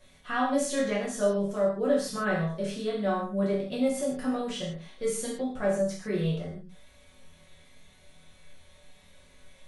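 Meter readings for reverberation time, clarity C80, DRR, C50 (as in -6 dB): not exponential, 7.5 dB, -7.0 dB, 3.5 dB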